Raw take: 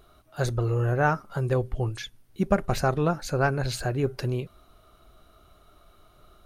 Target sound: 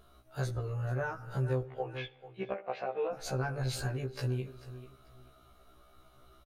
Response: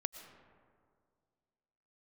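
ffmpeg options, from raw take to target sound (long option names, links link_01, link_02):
-filter_complex "[0:a]asettb=1/sr,asplit=3[link_01][link_02][link_03];[link_01]atrim=end=1.634[link_04];[link_02]atrim=start=1.63:end=3.13,asetpts=PTS-STARTPTS,afade=type=in:duration=0.004:curve=qsin,afade=type=out:start_time=1.496:duration=0.004:curve=qsin,highpass=480,equalizer=frequency=500:width_type=q:width=4:gain=10,equalizer=frequency=770:width_type=q:width=4:gain=6,equalizer=frequency=1300:width_type=q:width=4:gain=-5,equalizer=frequency=2500:width_type=q:width=4:gain=7,lowpass=frequency=3200:width=0.5412,lowpass=frequency=3200:width=1.3066[link_05];[link_03]atrim=start=3.126[link_06];[link_04][link_05]acrossfade=duration=0.004:curve1=hsin:curve2=qsin[link_07];[link_07][link_06]acrossfade=duration=0.004:curve1=qsin:curve2=hsin,aecho=1:1:439|878:0.126|0.0315,asplit=2[link_08][link_09];[1:a]atrim=start_sample=2205,asetrate=79380,aresample=44100[link_10];[link_09][link_10]afir=irnorm=-1:irlink=0,volume=-5.5dB[link_11];[link_08][link_11]amix=inputs=2:normalize=0,acompressor=threshold=-25dB:ratio=12,afftfilt=real='re*1.73*eq(mod(b,3),0)':imag='im*1.73*eq(mod(b,3),0)':win_size=2048:overlap=0.75,volume=-3.5dB"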